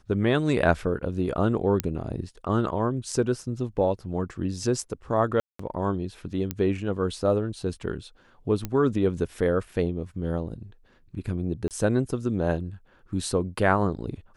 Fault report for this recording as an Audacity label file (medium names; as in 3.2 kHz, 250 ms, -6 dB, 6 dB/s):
1.800000	1.800000	pop -9 dBFS
5.400000	5.590000	dropout 194 ms
6.510000	6.510000	pop -13 dBFS
8.650000	8.650000	pop -15 dBFS
11.680000	11.710000	dropout 28 ms